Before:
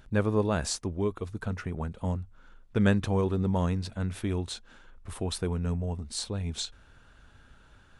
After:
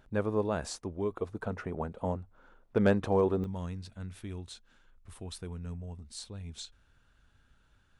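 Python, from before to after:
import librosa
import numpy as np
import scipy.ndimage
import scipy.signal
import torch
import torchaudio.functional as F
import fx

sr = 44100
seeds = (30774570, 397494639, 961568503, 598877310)

y = fx.peak_eq(x, sr, hz=600.0, db=fx.steps((0.0, 7.0), (1.13, 13.5), (3.44, -4.0)), octaves=2.8)
y = np.clip(y, -10.0 ** (-7.0 / 20.0), 10.0 ** (-7.0 / 20.0))
y = y * 10.0 ** (-9.0 / 20.0)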